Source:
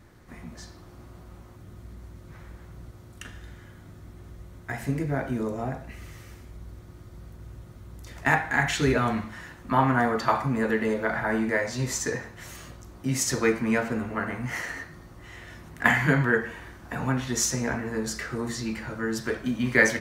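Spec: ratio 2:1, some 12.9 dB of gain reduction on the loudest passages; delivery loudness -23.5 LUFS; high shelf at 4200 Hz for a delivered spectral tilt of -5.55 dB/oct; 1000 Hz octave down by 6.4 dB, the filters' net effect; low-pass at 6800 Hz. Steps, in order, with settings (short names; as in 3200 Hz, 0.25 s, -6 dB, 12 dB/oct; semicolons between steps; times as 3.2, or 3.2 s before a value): LPF 6800 Hz; bell 1000 Hz -8 dB; high shelf 4200 Hz -8 dB; compressor 2:1, threshold -42 dBFS; gain +17 dB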